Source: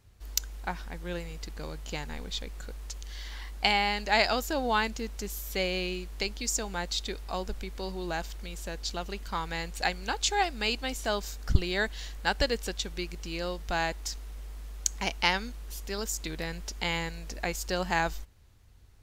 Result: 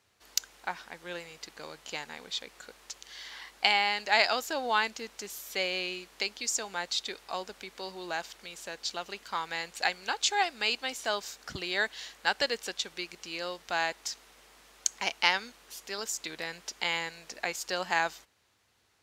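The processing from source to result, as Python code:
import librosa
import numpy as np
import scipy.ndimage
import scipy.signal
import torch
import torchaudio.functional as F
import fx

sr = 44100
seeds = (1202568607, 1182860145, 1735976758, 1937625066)

y = fx.weighting(x, sr, curve='A')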